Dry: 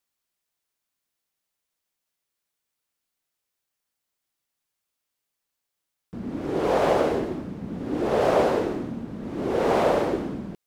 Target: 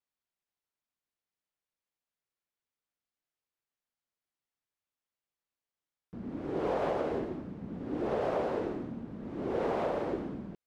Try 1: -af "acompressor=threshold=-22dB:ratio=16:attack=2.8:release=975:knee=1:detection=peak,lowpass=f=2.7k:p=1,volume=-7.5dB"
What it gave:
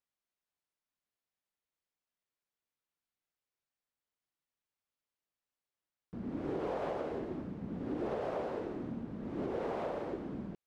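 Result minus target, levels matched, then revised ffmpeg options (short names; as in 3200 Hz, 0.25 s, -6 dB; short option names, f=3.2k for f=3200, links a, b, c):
compressor: peak gain reduction +5.5 dB
-af "acompressor=threshold=-16dB:ratio=16:attack=2.8:release=975:knee=1:detection=peak,lowpass=f=2.7k:p=1,volume=-7.5dB"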